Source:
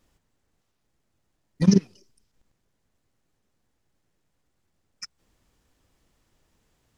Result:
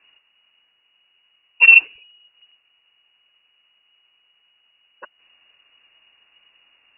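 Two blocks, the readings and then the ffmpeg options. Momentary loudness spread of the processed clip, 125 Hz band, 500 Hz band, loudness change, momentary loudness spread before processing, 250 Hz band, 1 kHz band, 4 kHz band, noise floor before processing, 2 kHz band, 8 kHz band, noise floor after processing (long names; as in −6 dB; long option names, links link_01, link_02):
3 LU, below −40 dB, below −10 dB, +11.5 dB, 3 LU, below −35 dB, +10.0 dB, +12.0 dB, −75 dBFS, +35.5 dB, can't be measured, −64 dBFS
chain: -af "lowpass=frequency=2500:width_type=q:width=0.5098,lowpass=frequency=2500:width_type=q:width=0.6013,lowpass=frequency=2500:width_type=q:width=0.9,lowpass=frequency=2500:width_type=q:width=2.563,afreqshift=-2900,apsyclip=12.5dB,volume=-2dB"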